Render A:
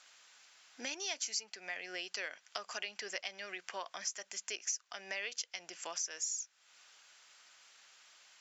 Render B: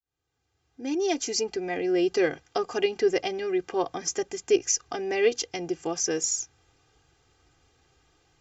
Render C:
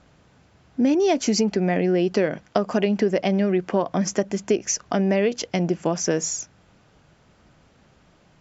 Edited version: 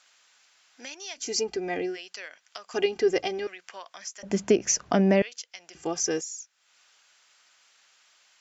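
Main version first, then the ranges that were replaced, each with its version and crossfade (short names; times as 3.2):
A
1.24–1.9 from B, crossfade 0.16 s
2.74–3.47 from B
4.23–5.22 from C
5.75–6.21 from B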